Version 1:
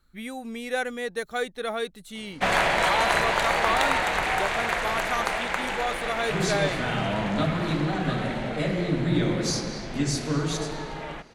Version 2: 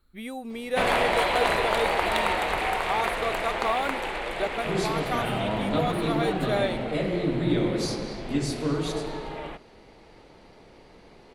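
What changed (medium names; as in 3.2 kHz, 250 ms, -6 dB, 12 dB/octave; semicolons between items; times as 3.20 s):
background: entry -1.65 s; master: add fifteen-band graphic EQ 160 Hz -4 dB, 400 Hz +3 dB, 1.6 kHz -5 dB, 6.3 kHz -9 dB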